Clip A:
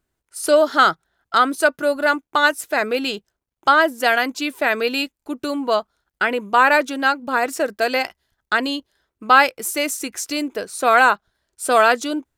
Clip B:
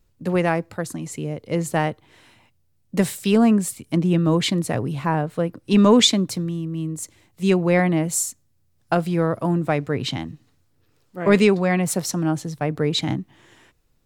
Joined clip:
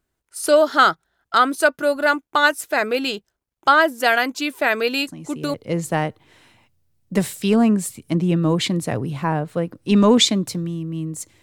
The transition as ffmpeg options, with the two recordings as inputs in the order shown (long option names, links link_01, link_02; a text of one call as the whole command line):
ffmpeg -i cue0.wav -i cue1.wav -filter_complex "[1:a]asplit=2[link_01][link_02];[0:a]apad=whole_dur=11.42,atrim=end=11.42,atrim=end=5.542[link_03];[link_02]atrim=start=1.358:end=7.24[link_04];[link_01]atrim=start=0.89:end=1.36,asetpts=PTS-STARTPTS,volume=-6dB,afade=type=in:duration=0.004:curve=hsin,afade=type=out:start_time=0.466:duration=0.004:curve=hsin,adelay=5070[link_05];[link_03][link_04]acrossfade=duration=0.004:curve1=hsin:curve2=hsin[link_06];[link_06][link_05]amix=inputs=2:normalize=0" out.wav